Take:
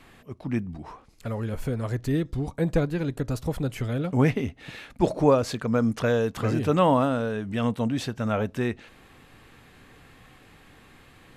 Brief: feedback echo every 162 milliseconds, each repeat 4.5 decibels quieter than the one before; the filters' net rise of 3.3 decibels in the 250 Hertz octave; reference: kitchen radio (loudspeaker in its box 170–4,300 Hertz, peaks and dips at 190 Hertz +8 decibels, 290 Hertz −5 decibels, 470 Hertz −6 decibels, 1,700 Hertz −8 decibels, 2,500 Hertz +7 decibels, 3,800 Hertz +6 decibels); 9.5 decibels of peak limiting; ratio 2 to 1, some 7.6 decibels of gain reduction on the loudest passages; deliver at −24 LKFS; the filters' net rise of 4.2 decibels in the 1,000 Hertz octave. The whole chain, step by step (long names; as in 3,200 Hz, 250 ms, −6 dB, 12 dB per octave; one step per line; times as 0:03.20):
parametric band 250 Hz +5 dB
parametric band 1,000 Hz +5.5 dB
downward compressor 2 to 1, threshold −26 dBFS
brickwall limiter −21.5 dBFS
loudspeaker in its box 170–4,300 Hz, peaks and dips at 190 Hz +8 dB, 290 Hz −5 dB, 470 Hz −6 dB, 1,700 Hz −8 dB, 2,500 Hz +7 dB, 3,800 Hz +6 dB
repeating echo 162 ms, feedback 60%, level −4.5 dB
level +6.5 dB